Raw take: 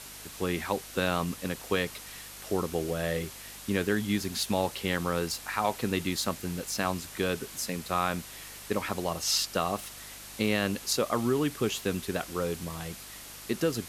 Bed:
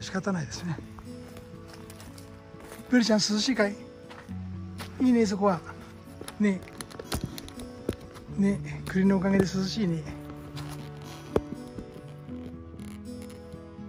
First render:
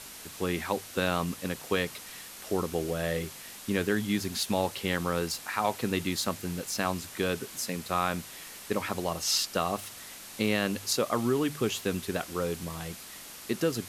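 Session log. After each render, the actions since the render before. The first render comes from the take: de-hum 50 Hz, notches 3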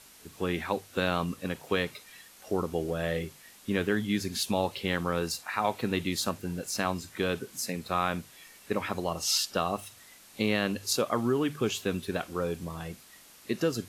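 noise print and reduce 9 dB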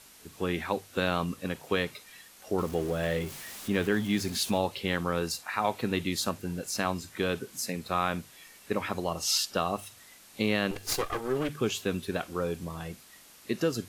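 2.58–4.58 zero-crossing step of -39.5 dBFS; 10.71–11.49 minimum comb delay 2.5 ms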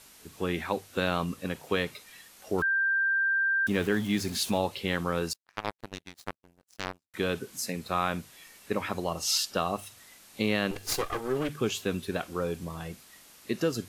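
2.62–3.67 bleep 1580 Hz -23 dBFS; 5.33–7.14 power-law curve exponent 3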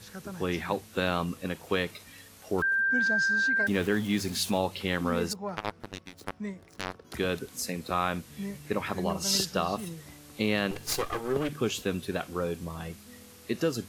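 add bed -12 dB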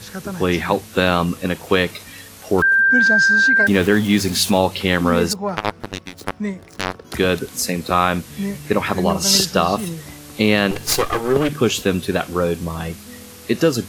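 gain +12 dB; limiter -2 dBFS, peak gain reduction 1.5 dB

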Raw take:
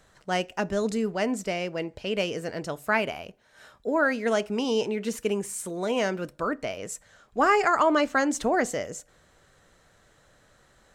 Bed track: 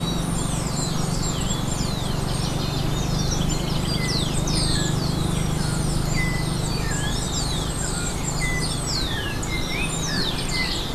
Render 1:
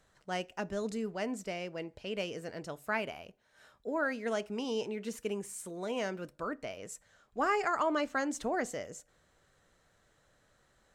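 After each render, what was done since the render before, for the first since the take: gain -9 dB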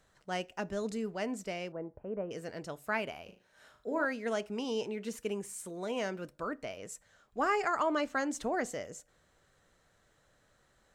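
1.72–2.31 inverse Chebyshev low-pass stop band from 4400 Hz, stop band 60 dB; 3.22–4.05 flutter echo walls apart 6.5 m, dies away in 0.36 s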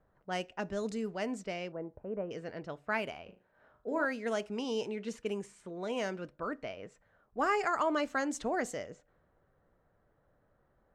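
low-pass opened by the level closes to 1000 Hz, open at -30.5 dBFS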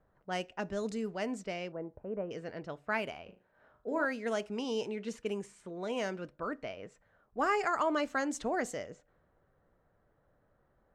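nothing audible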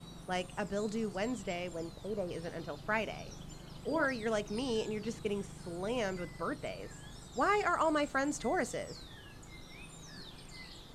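add bed track -25.5 dB

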